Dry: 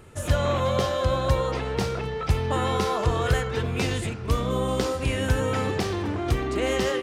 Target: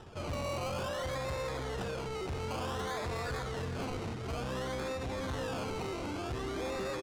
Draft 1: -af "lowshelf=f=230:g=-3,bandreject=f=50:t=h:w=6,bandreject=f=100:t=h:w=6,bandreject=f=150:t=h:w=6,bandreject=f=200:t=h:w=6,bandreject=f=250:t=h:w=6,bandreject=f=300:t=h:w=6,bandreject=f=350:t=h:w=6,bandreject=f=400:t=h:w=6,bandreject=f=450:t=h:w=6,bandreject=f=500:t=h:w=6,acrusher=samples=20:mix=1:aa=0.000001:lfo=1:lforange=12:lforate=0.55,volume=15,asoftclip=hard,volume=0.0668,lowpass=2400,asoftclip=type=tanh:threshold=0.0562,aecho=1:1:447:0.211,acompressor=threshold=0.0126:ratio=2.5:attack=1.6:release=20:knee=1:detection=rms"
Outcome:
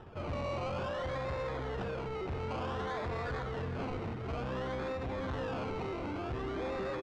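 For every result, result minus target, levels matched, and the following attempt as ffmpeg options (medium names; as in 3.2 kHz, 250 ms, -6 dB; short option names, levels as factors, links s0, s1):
overload inside the chain: distortion +25 dB; 8 kHz band -14.0 dB
-af "lowshelf=f=230:g=-3,bandreject=f=50:t=h:w=6,bandreject=f=100:t=h:w=6,bandreject=f=150:t=h:w=6,bandreject=f=200:t=h:w=6,bandreject=f=250:t=h:w=6,bandreject=f=300:t=h:w=6,bandreject=f=350:t=h:w=6,bandreject=f=400:t=h:w=6,bandreject=f=450:t=h:w=6,bandreject=f=500:t=h:w=6,acrusher=samples=20:mix=1:aa=0.000001:lfo=1:lforange=12:lforate=0.55,volume=5.31,asoftclip=hard,volume=0.188,lowpass=2400,asoftclip=type=tanh:threshold=0.0562,aecho=1:1:447:0.211,acompressor=threshold=0.0126:ratio=2.5:attack=1.6:release=20:knee=1:detection=rms"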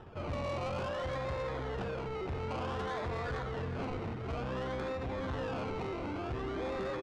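8 kHz band -12.5 dB
-af "lowshelf=f=230:g=-3,bandreject=f=50:t=h:w=6,bandreject=f=100:t=h:w=6,bandreject=f=150:t=h:w=6,bandreject=f=200:t=h:w=6,bandreject=f=250:t=h:w=6,bandreject=f=300:t=h:w=6,bandreject=f=350:t=h:w=6,bandreject=f=400:t=h:w=6,bandreject=f=450:t=h:w=6,bandreject=f=500:t=h:w=6,acrusher=samples=20:mix=1:aa=0.000001:lfo=1:lforange=12:lforate=0.55,volume=5.31,asoftclip=hard,volume=0.188,lowpass=6700,asoftclip=type=tanh:threshold=0.0562,aecho=1:1:447:0.211,acompressor=threshold=0.0126:ratio=2.5:attack=1.6:release=20:knee=1:detection=rms"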